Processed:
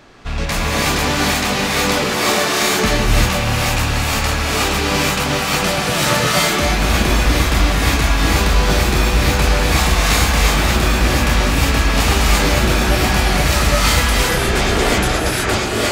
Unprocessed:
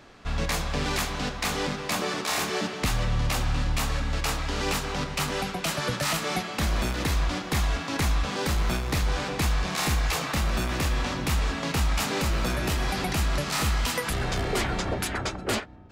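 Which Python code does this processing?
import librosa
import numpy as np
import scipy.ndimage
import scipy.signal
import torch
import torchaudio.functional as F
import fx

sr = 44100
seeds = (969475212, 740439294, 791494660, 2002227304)

y = fx.rattle_buzz(x, sr, strikes_db=-33.0, level_db=-28.0)
y = fx.rev_gated(y, sr, seeds[0], gate_ms=390, shape='rising', drr_db=-6.0)
y = y * librosa.db_to_amplitude(5.5)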